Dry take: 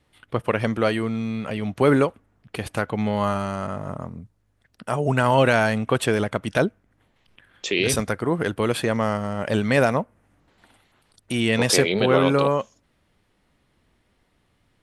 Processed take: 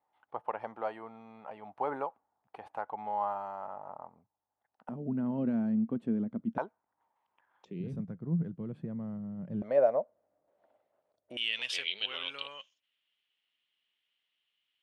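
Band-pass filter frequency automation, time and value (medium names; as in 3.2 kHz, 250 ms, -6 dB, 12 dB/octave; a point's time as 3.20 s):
band-pass filter, Q 6.4
840 Hz
from 4.89 s 230 Hz
from 6.58 s 910 Hz
from 7.65 s 170 Hz
from 9.62 s 600 Hz
from 11.37 s 3 kHz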